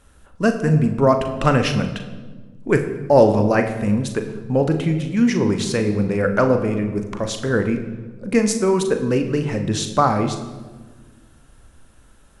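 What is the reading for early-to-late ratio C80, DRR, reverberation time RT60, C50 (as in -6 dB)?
10.5 dB, 6.0 dB, 1.4 s, 9.0 dB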